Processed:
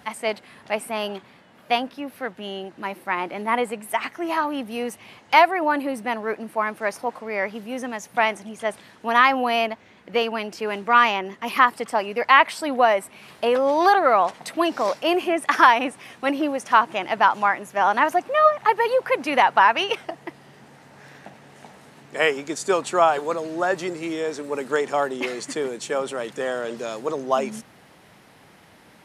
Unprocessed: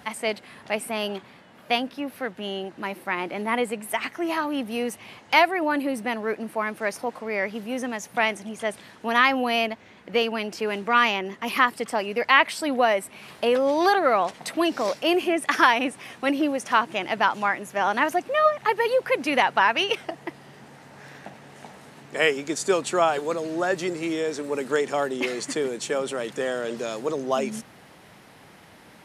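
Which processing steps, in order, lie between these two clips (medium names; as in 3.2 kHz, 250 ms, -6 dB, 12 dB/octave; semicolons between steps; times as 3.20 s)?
dynamic bell 960 Hz, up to +7 dB, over -34 dBFS, Q 0.92; trim -1.5 dB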